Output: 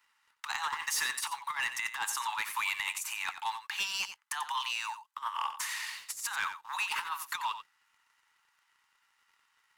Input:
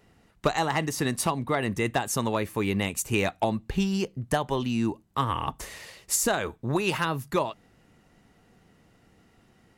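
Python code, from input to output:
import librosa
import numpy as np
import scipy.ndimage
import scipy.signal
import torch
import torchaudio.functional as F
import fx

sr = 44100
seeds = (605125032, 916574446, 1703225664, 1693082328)

p1 = scipy.signal.sosfilt(scipy.signal.butter(16, 870.0, 'highpass', fs=sr, output='sos'), x)
p2 = fx.peak_eq(p1, sr, hz=15000.0, db=-2.5, octaves=2.0)
p3 = fx.over_compress(p2, sr, threshold_db=-35.0, ratio=-0.5)
p4 = fx.leveller(p3, sr, passes=2)
p5 = p4 + fx.echo_single(p4, sr, ms=90, db=-11.0, dry=0)
y = p5 * librosa.db_to_amplitude(-4.5)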